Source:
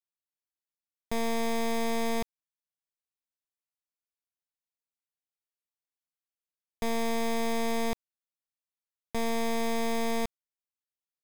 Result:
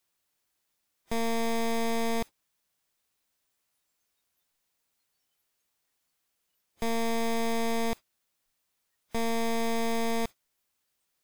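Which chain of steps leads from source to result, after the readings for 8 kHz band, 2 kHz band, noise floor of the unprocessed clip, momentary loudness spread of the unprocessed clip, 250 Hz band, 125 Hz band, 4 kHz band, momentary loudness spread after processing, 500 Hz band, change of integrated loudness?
+0.5 dB, +0.5 dB, under -85 dBFS, 7 LU, +0.5 dB, +0.5 dB, +0.5 dB, 7 LU, +0.5 dB, +0.5 dB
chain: jump at every zero crossing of -46 dBFS; spectral noise reduction 22 dB

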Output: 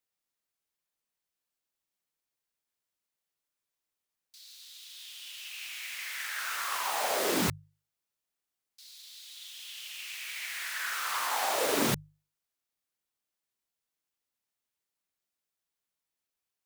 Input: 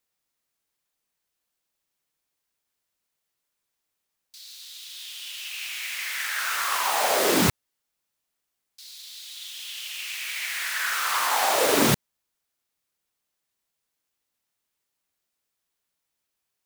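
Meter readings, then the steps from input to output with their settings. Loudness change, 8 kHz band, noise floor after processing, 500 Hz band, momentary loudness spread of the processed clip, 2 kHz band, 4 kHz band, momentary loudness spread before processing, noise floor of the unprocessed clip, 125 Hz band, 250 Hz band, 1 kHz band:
-7.5 dB, -7.5 dB, under -85 dBFS, -7.5 dB, 19 LU, -7.5 dB, -7.5 dB, 19 LU, -82 dBFS, -8.0 dB, -7.5 dB, -7.5 dB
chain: hum notches 50/100/150 Hz; trim -7.5 dB

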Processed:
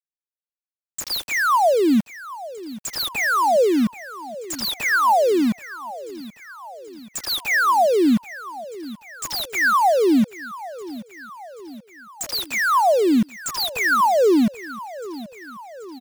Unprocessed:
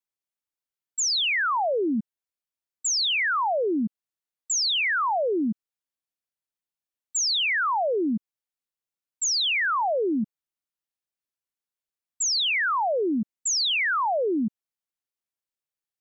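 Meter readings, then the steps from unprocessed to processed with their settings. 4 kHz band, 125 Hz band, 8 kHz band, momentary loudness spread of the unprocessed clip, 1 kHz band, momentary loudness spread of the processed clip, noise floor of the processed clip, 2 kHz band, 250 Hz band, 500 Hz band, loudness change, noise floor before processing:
-3.0 dB, +9.0 dB, no reading, 9 LU, +7.5 dB, 21 LU, under -85 dBFS, +4.0 dB, +8.5 dB, +8.0 dB, +4.5 dB, under -85 dBFS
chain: median filter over 15 samples; reverb removal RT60 1.3 s; phaser 0.98 Hz, delay 2 ms, feedback 20%; small samples zeroed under -33.5 dBFS; feedback delay 781 ms, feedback 57%, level -17 dB; trim +8 dB

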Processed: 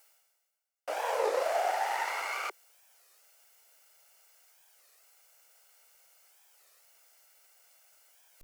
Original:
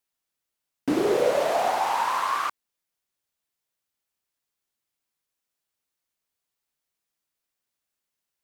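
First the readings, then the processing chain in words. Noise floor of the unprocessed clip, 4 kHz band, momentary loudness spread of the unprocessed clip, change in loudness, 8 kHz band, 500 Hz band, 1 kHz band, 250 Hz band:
-85 dBFS, -6.5 dB, 7 LU, -7.5 dB, -4.5 dB, -8.0 dB, -7.0 dB, under -25 dB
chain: comb filter that takes the minimum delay 1.4 ms; steep high-pass 380 Hz 48 dB/octave; peaking EQ 3.7 kHz -7.5 dB 0.29 oct; reverse; upward compressor, threshold -35 dBFS; reverse; warped record 33 1/3 rpm, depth 250 cents; trim -5 dB

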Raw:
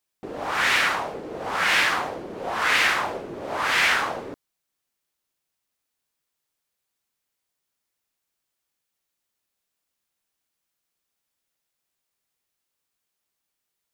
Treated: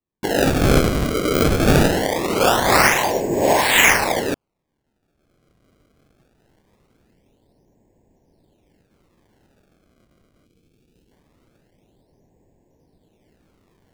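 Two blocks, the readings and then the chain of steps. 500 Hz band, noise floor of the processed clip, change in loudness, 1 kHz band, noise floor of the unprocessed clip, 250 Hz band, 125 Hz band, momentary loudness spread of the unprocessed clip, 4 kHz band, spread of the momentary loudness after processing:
+13.5 dB, -74 dBFS, +5.5 dB, +5.5 dB, -82 dBFS, +17.5 dB, +22.5 dB, 14 LU, +3.5 dB, 9 LU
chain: recorder AGC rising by 19 dB/s; level-controlled noise filter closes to 350 Hz, open at -19 dBFS; Butterworth band-stop 1.3 kHz, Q 1.8; decimation with a swept rate 28×, swing 160% 0.22 Hz; time-frequency box 10.46–11.12 s, 520–2200 Hz -12 dB; trim +8 dB

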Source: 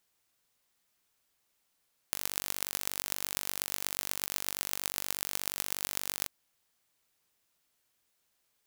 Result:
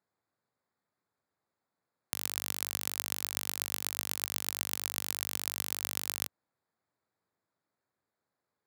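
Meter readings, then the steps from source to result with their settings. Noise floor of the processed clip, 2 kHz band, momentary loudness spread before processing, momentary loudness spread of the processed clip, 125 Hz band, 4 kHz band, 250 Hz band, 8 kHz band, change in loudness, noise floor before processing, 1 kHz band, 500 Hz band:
under -85 dBFS, 0.0 dB, 2 LU, 2 LU, -1.0 dB, 0.0 dB, 0.0 dB, 0.0 dB, 0.0 dB, -77 dBFS, 0.0 dB, 0.0 dB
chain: local Wiener filter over 15 samples; high-pass 84 Hz 24 dB/octave

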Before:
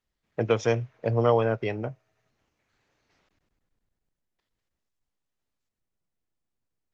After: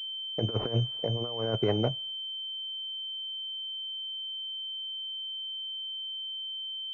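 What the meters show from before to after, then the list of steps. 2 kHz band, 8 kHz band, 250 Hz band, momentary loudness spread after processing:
-12.0 dB, no reading, -2.5 dB, 5 LU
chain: expander -54 dBFS; compressor with a negative ratio -28 dBFS, ratio -0.5; class-D stage that switches slowly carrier 3.1 kHz

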